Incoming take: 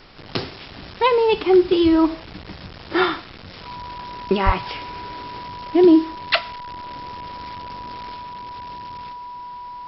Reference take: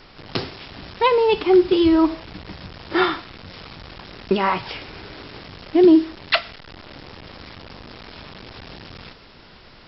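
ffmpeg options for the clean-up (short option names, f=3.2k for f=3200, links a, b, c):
-filter_complex "[0:a]bandreject=f=980:w=30,asplit=3[a][b][c];[a]afade=t=out:st=4.45:d=0.02[d];[b]highpass=f=140:w=0.5412,highpass=f=140:w=1.3066,afade=t=in:st=4.45:d=0.02,afade=t=out:st=4.57:d=0.02[e];[c]afade=t=in:st=4.57:d=0.02[f];[d][e][f]amix=inputs=3:normalize=0,asetnsamples=n=441:p=0,asendcmd='8.16 volume volume 4dB',volume=0dB"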